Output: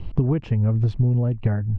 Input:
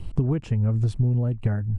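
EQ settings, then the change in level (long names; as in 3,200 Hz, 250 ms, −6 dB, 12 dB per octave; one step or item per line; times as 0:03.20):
high-frequency loss of the air 210 metres
low-shelf EQ 380 Hz −3.5 dB
parametric band 1,400 Hz −3 dB 0.38 octaves
+5.5 dB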